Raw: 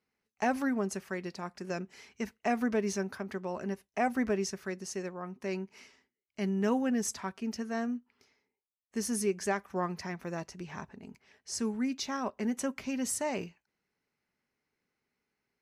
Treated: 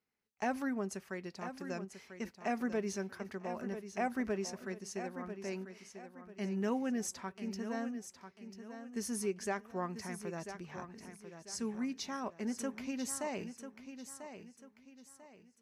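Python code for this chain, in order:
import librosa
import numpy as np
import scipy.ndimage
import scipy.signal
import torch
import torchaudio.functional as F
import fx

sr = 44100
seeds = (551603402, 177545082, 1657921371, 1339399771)

y = fx.echo_feedback(x, sr, ms=993, feedback_pct=35, wet_db=-10.0)
y = F.gain(torch.from_numpy(y), -5.5).numpy()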